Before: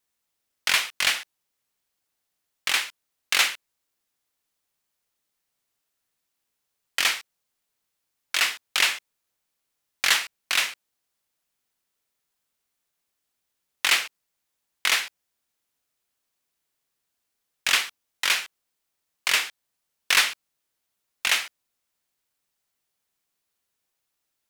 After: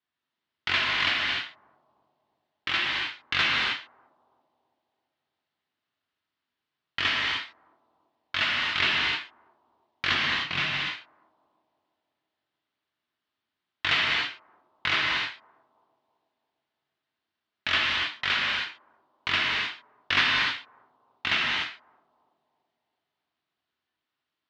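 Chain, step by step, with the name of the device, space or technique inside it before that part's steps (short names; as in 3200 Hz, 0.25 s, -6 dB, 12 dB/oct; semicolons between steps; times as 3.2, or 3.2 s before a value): analogue delay pedal into a guitar amplifier (analogue delay 0.332 s, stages 2048, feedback 51%, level -20 dB; tube stage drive 12 dB, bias 0.65; speaker cabinet 99–3700 Hz, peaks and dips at 490 Hz -9 dB, 800 Hz -4 dB, 2400 Hz -4 dB); 10.11–10.6 fifteen-band EQ 160 Hz +12 dB, 1600 Hz -5 dB, 4000 Hz -3 dB, 10000 Hz -9 dB; non-linear reverb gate 0.33 s flat, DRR -3.5 dB; gain +1 dB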